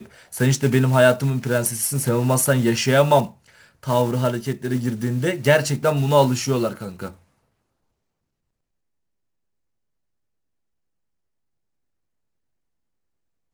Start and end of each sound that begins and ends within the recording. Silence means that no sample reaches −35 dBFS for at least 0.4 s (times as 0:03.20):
0:03.83–0:07.11